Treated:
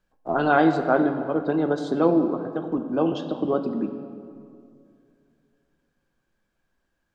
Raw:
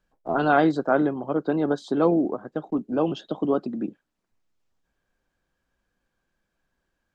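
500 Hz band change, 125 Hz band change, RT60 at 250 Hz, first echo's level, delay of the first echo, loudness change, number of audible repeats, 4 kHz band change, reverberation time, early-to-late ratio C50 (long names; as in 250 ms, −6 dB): +1.0 dB, +1.0 dB, 2.6 s, no echo audible, no echo audible, +1.0 dB, no echo audible, +0.5 dB, 2.4 s, 8.5 dB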